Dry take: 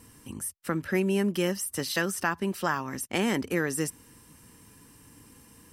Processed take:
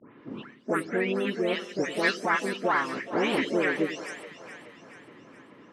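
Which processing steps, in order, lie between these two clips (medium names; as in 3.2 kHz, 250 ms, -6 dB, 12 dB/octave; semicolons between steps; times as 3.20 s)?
delay that grows with frequency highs late, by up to 329 ms; level-controlled noise filter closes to 1.7 kHz, open at -25.5 dBFS; harmony voices +4 st -6 dB; in parallel at +2 dB: compression, threshold -38 dBFS, peak gain reduction 15.5 dB; on the sum: harmonic-percussive split percussive +6 dB; band-pass 240–3700 Hz; on a send: two-band feedback delay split 500 Hz, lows 93 ms, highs 425 ms, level -12 dB; on the sum: trim -3.5 dB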